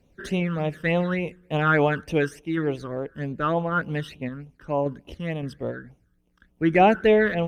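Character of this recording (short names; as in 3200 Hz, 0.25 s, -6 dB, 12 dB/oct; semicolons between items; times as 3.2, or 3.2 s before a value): random-step tremolo; phasing stages 12, 3.4 Hz, lowest notch 720–1600 Hz; Opus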